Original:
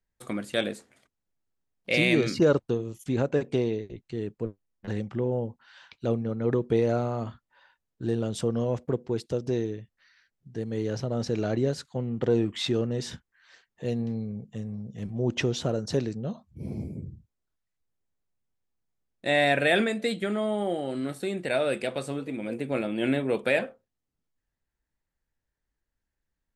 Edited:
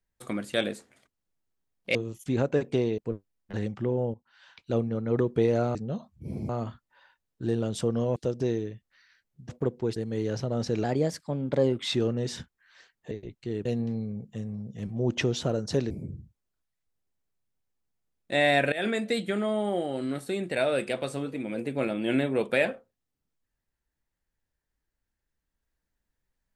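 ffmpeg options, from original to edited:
-filter_complex "[0:a]asplit=15[s0][s1][s2][s3][s4][s5][s6][s7][s8][s9][s10][s11][s12][s13][s14];[s0]atrim=end=1.952[s15];[s1]atrim=start=2.748:end=3.782[s16];[s2]atrim=start=4.318:end=5.48,asetpts=PTS-STARTPTS,afade=t=out:st=1.158:d=0.004:c=hsin:silence=0.223872[s17];[s3]atrim=start=5.48:end=7.092,asetpts=PTS-STARTPTS,afade=t=in:d=0.57:silence=0.223872[s18];[s4]atrim=start=16.098:end=16.842[s19];[s5]atrim=start=7.088:end=8.762[s20];[s6]atrim=start=9.228:end=10.562[s21];[s7]atrim=start=8.758:end=9.232[s22];[s8]atrim=start=10.558:end=11.444[s23];[s9]atrim=start=11.44:end=12.56,asetpts=PTS-STARTPTS,asetrate=50274,aresample=44100,atrim=end_sample=43326,asetpts=PTS-STARTPTS[s24];[s10]atrim=start=12.556:end=13.852[s25];[s11]atrim=start=3.778:end=4.322[s26];[s12]atrim=start=13.848:end=16.102[s27];[s13]atrim=start=16.838:end=19.66,asetpts=PTS-STARTPTS,afade=t=out:st=2.818:d=0.004:c=hsin:silence=0.1[s28];[s14]atrim=start=19.66,asetpts=PTS-STARTPTS,afade=t=in:d=0.25:silence=0.1[s29];[s15][s16]acrossfade=d=0.004:c1=hsin:c2=hsin[s30];[s17][s18]concat=n=2:v=0:a=1[s31];[s30][s31]acrossfade=d=0.004:c1=hsin:c2=hsin[s32];[s32][s19]acrossfade=d=0.004:c1=hsin:c2=hsin[s33];[s33][s20]acrossfade=d=0.004:c1=hsin:c2=hsin[s34];[s34][s21]acrossfade=d=0.004:c1=hsin:c2=hsin[s35];[s35][s22]acrossfade=d=0.004:c1=hsin:c2=hsin[s36];[s36][s23]acrossfade=d=0.004:c1=hsin:c2=hsin[s37];[s37][s24]acrossfade=d=0.004:c1=hsin:c2=hsin[s38];[s38][s25]acrossfade=d=0.004:c1=hsin:c2=hsin[s39];[s39][s26]acrossfade=d=0.004:c1=hsin:c2=hsin[s40];[s40][s27]acrossfade=d=0.004:c1=hsin:c2=hsin[s41];[s28][s29]concat=n=2:v=0:a=1[s42];[s41][s42]acrossfade=d=0.004:c1=hsin:c2=hsin"

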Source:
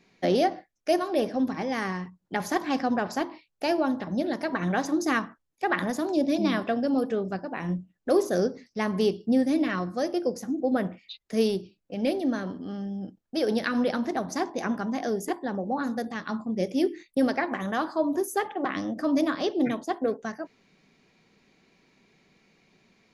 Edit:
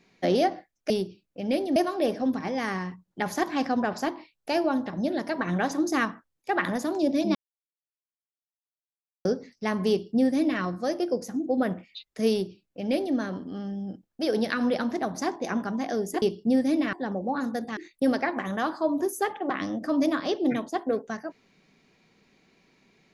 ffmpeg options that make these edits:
-filter_complex "[0:a]asplit=8[s0][s1][s2][s3][s4][s5][s6][s7];[s0]atrim=end=0.902[s8];[s1]atrim=start=11.438:end=12.302[s9];[s2]atrim=start=0.898:end=6.49,asetpts=PTS-STARTPTS,afade=t=out:st=5.588:d=0.004:c=hsin[s10];[s3]atrim=start=6.49:end=8.39,asetpts=PTS-STARTPTS,volume=0[s11];[s4]atrim=start=8.39:end=15.362,asetpts=PTS-STARTPTS,afade=t=in:d=0.004:c=hsin[s12];[s5]atrim=start=9.038:end=9.752[s13];[s6]atrim=start=15.358:end=16.202[s14];[s7]atrim=start=16.918[s15];[s8][s9]acrossfade=d=0.004:c1=hsin:c2=hsin[s16];[s10][s11][s12]concat=n=3:v=0:a=1[s17];[s16][s17]acrossfade=d=0.004:c1=hsin:c2=hsin[s18];[s18][s13]acrossfade=d=0.004:c1=hsin:c2=hsin[s19];[s19][s14]acrossfade=d=0.004:c1=hsin:c2=hsin[s20];[s20][s15]acrossfade=d=0.004:c1=hsin:c2=hsin"

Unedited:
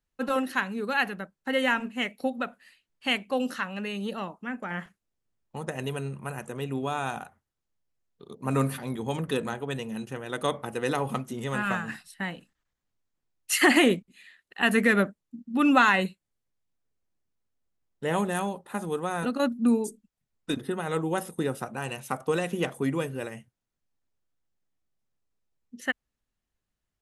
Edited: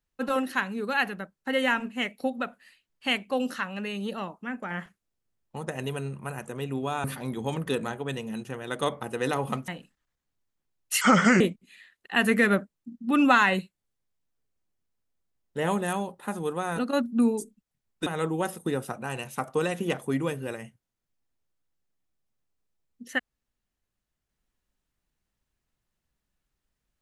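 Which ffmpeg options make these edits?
-filter_complex "[0:a]asplit=6[s0][s1][s2][s3][s4][s5];[s0]atrim=end=7.042[s6];[s1]atrim=start=8.658:end=11.302[s7];[s2]atrim=start=12.258:end=13.594[s8];[s3]atrim=start=13.59:end=13.87,asetpts=PTS-STARTPTS,asetrate=31311,aresample=44100[s9];[s4]atrim=start=13.866:end=20.532[s10];[s5]atrim=start=20.788[s11];[s6][s7]acrossfade=d=0.004:c1=hsin:c2=hsin[s12];[s12][s8]acrossfade=d=0.004:c1=hsin:c2=hsin[s13];[s13][s9]acrossfade=d=0.004:c1=hsin:c2=hsin[s14];[s14][s10]acrossfade=d=0.004:c1=hsin:c2=hsin[s15];[s15][s11]acrossfade=d=0.004:c1=hsin:c2=hsin"

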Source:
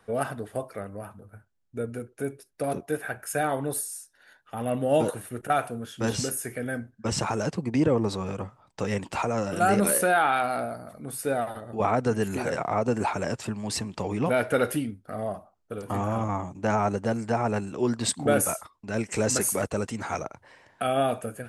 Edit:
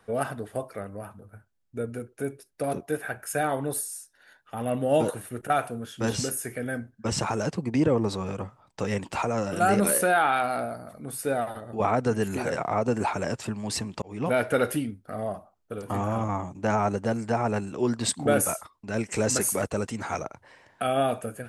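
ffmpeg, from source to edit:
-filter_complex "[0:a]asplit=2[s0][s1];[s0]atrim=end=14.02,asetpts=PTS-STARTPTS,afade=t=out:st=14.016:d=0.004:c=hsin[s2];[s1]atrim=start=14.02,asetpts=PTS-STARTPTS,afade=t=in:d=0.3[s3];[s2][s3]concat=n=2:v=0:a=1"

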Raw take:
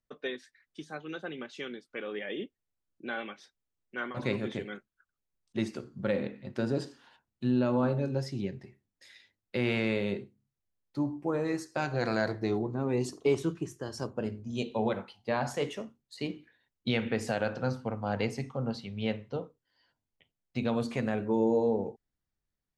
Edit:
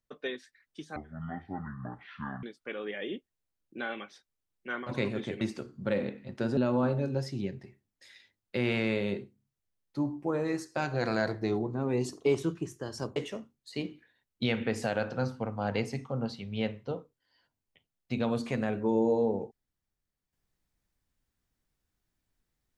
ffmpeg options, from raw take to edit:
-filter_complex "[0:a]asplit=6[s0][s1][s2][s3][s4][s5];[s0]atrim=end=0.964[s6];[s1]atrim=start=0.96:end=1.71,asetpts=PTS-STARTPTS,asetrate=22491,aresample=44100[s7];[s2]atrim=start=1.706:end=4.692[s8];[s3]atrim=start=5.588:end=6.752[s9];[s4]atrim=start=7.568:end=14.162[s10];[s5]atrim=start=15.608[s11];[s6][s7]acrossfade=d=0.004:c1=hsin:c2=hsin[s12];[s12][s8]acrossfade=d=0.004:c1=hsin:c2=hsin[s13];[s13][s9]acrossfade=d=0.004:c1=hsin:c2=hsin[s14];[s14][s10]acrossfade=d=0.004:c1=hsin:c2=hsin[s15];[s15][s11]acrossfade=d=0.004:c1=hsin:c2=hsin"

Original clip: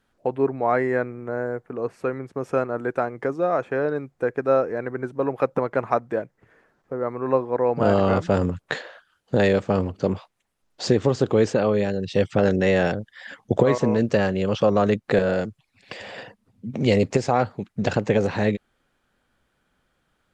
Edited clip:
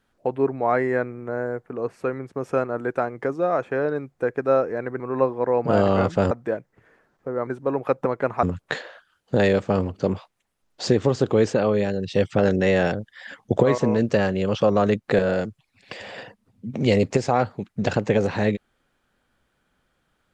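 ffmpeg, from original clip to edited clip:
-filter_complex "[0:a]asplit=5[s0][s1][s2][s3][s4];[s0]atrim=end=5.002[s5];[s1]atrim=start=7.118:end=8.432[s6];[s2]atrim=start=5.958:end=7.122[s7];[s3]atrim=start=4.998:end=5.962[s8];[s4]atrim=start=8.428[s9];[s5][s6]acrossfade=d=0.004:c1=hsin:c2=hsin[s10];[s10][s7]acrossfade=d=0.004:c1=hsin:c2=hsin[s11];[s11][s8]acrossfade=d=0.004:c1=hsin:c2=hsin[s12];[s12][s9]acrossfade=d=0.004:c1=hsin:c2=hsin"

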